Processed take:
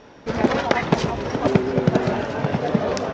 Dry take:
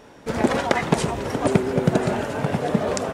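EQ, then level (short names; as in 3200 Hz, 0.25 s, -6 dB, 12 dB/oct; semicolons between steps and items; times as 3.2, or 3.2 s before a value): steep low-pass 6200 Hz 48 dB/oct; +1.0 dB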